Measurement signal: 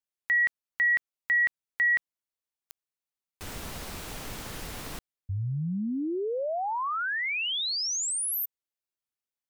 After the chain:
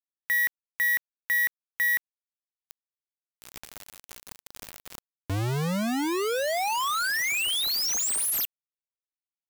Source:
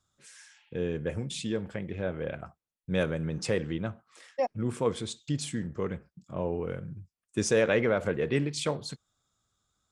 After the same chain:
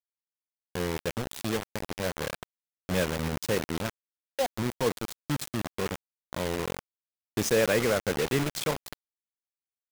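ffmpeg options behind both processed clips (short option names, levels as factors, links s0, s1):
-af "acrusher=bits=4:mix=0:aa=0.000001"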